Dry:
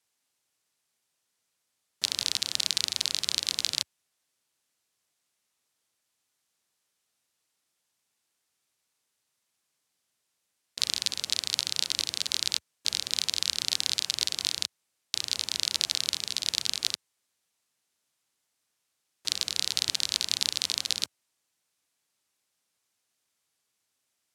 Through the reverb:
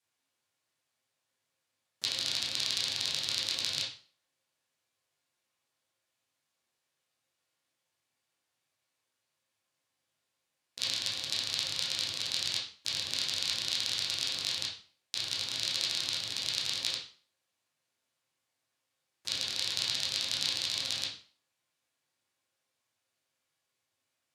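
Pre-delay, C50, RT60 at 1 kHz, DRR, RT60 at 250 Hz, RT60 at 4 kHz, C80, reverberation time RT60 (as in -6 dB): 6 ms, 5.0 dB, 0.45 s, -6.5 dB, 0.40 s, 0.40 s, 11.0 dB, 0.45 s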